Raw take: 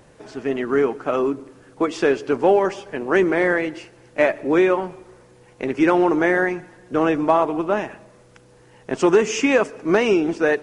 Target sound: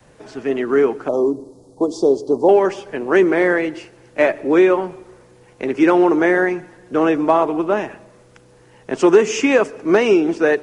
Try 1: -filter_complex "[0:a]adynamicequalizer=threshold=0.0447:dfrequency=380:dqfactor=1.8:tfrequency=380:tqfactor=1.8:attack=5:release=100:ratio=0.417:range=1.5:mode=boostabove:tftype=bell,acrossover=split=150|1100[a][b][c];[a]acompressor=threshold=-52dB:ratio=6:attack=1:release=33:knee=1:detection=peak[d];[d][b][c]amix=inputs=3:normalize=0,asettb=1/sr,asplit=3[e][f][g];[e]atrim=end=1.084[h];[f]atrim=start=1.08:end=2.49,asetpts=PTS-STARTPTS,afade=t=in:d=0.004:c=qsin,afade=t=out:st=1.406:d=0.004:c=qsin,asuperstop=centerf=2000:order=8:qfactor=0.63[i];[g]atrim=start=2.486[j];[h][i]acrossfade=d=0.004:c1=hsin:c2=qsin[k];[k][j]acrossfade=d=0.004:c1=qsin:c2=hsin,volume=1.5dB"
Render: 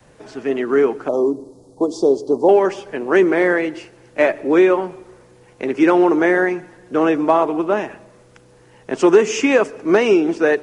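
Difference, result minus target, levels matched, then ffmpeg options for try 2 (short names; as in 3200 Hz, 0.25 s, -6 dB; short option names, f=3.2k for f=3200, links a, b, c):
compressor: peak gain reduction +6 dB
-filter_complex "[0:a]adynamicequalizer=threshold=0.0447:dfrequency=380:dqfactor=1.8:tfrequency=380:tqfactor=1.8:attack=5:release=100:ratio=0.417:range=1.5:mode=boostabove:tftype=bell,acrossover=split=150|1100[a][b][c];[a]acompressor=threshold=-45dB:ratio=6:attack=1:release=33:knee=1:detection=peak[d];[d][b][c]amix=inputs=3:normalize=0,asettb=1/sr,asplit=3[e][f][g];[e]atrim=end=1.084[h];[f]atrim=start=1.08:end=2.49,asetpts=PTS-STARTPTS,afade=t=in:d=0.004:c=qsin,afade=t=out:st=1.406:d=0.004:c=qsin,asuperstop=centerf=2000:order=8:qfactor=0.63[i];[g]atrim=start=2.486[j];[h][i]acrossfade=d=0.004:c1=hsin:c2=qsin[k];[k][j]acrossfade=d=0.004:c1=qsin:c2=hsin,volume=1.5dB"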